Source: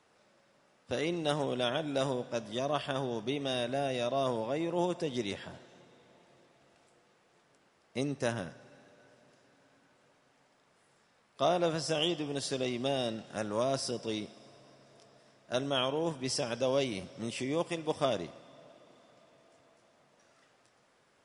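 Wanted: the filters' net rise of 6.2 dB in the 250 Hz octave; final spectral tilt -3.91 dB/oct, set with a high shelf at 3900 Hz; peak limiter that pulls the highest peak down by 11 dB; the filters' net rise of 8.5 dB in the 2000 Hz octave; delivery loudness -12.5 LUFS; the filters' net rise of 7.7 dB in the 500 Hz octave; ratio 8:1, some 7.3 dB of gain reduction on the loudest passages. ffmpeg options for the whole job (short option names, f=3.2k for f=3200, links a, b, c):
-af "equalizer=f=250:t=o:g=5,equalizer=f=500:t=o:g=7.5,equalizer=f=2k:t=o:g=8.5,highshelf=f=3.9k:g=9,acompressor=threshold=-25dB:ratio=8,volume=22dB,alimiter=limit=-2dB:level=0:latency=1"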